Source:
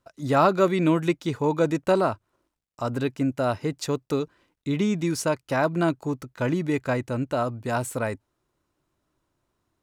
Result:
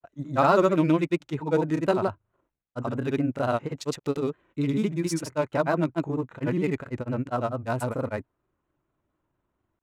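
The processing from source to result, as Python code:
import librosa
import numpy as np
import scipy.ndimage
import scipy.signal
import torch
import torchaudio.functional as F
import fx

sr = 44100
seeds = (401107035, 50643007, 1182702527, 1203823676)

y = fx.wiener(x, sr, points=9)
y = fx.granulator(y, sr, seeds[0], grain_ms=100.0, per_s=20.0, spray_ms=100.0, spread_st=0)
y = fx.vibrato(y, sr, rate_hz=4.4, depth_cents=57.0)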